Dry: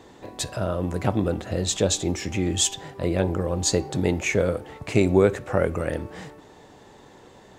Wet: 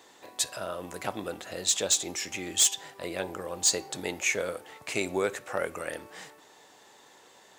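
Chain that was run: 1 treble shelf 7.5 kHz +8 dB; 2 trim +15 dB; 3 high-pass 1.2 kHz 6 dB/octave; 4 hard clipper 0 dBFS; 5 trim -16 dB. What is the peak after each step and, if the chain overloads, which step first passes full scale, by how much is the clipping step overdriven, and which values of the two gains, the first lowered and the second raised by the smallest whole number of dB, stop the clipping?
-4.0 dBFS, +11.0 dBFS, +9.5 dBFS, 0.0 dBFS, -16.0 dBFS; step 2, 9.5 dB; step 2 +5 dB, step 5 -6 dB

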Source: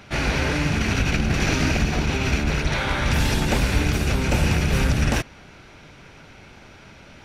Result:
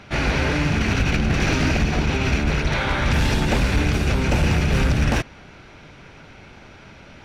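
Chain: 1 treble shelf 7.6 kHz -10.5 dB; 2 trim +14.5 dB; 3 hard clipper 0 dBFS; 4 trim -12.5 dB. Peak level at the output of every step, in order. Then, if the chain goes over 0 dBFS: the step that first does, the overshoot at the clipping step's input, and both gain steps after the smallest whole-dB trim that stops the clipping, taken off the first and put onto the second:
-8.5 dBFS, +6.0 dBFS, 0.0 dBFS, -12.5 dBFS; step 2, 6.0 dB; step 2 +8.5 dB, step 4 -6.5 dB

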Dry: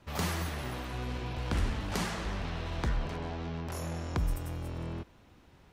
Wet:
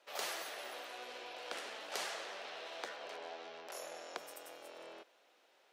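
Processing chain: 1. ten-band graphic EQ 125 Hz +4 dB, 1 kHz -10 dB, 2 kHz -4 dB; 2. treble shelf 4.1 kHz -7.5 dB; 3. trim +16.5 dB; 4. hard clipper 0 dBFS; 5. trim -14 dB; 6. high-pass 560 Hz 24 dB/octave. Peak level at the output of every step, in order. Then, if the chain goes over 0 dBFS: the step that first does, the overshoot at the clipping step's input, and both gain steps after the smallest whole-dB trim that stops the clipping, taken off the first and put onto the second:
-19.0 dBFS, -19.0 dBFS, -2.5 dBFS, -2.5 dBFS, -16.5 dBFS, -22.5 dBFS; nothing clips

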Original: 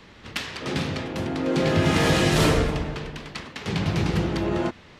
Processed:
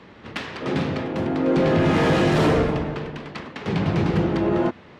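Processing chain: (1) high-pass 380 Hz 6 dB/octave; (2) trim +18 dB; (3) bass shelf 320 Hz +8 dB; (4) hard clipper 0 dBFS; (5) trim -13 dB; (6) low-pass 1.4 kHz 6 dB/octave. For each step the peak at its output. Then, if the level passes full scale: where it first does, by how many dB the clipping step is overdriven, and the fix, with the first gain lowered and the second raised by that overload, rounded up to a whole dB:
-10.5 dBFS, +7.5 dBFS, +9.0 dBFS, 0.0 dBFS, -13.0 dBFS, -13.0 dBFS; step 2, 9.0 dB; step 2 +9 dB, step 5 -4 dB

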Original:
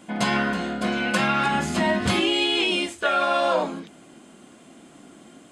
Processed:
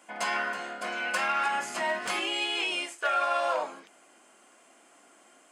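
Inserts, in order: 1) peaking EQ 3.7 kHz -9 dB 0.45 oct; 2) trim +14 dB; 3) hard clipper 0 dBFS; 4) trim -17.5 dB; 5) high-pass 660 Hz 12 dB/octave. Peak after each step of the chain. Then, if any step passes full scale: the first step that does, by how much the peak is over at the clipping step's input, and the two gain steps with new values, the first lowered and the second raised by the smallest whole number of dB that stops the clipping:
-10.5 dBFS, +3.5 dBFS, 0.0 dBFS, -17.5 dBFS, -16.0 dBFS; step 2, 3.5 dB; step 2 +10 dB, step 4 -13.5 dB

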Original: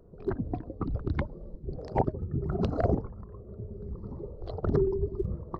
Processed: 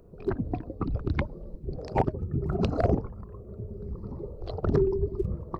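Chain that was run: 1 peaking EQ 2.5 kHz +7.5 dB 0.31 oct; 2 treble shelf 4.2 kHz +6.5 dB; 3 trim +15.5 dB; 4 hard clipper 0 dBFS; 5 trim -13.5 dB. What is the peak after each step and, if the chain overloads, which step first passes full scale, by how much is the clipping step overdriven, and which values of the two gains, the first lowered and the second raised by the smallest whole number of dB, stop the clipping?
-12.0 dBFS, -12.0 dBFS, +3.5 dBFS, 0.0 dBFS, -13.5 dBFS; step 3, 3.5 dB; step 3 +11.5 dB, step 5 -9.5 dB

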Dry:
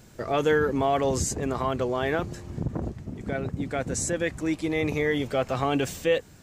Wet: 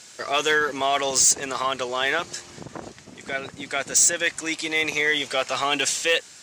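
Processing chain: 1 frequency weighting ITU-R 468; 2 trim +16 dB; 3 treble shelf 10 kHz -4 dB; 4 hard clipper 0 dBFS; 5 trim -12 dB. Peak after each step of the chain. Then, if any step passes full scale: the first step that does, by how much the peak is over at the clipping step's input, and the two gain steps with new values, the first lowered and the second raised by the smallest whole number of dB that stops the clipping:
-6.0 dBFS, +10.0 dBFS, +9.0 dBFS, 0.0 dBFS, -12.0 dBFS; step 2, 9.0 dB; step 2 +7 dB, step 5 -3 dB

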